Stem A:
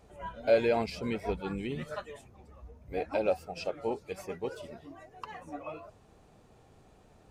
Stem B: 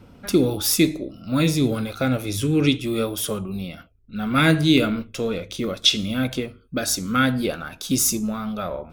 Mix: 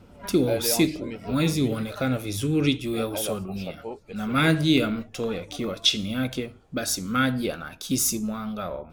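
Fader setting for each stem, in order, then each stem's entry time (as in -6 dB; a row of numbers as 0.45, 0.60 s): -3.0, -3.5 dB; 0.00, 0.00 s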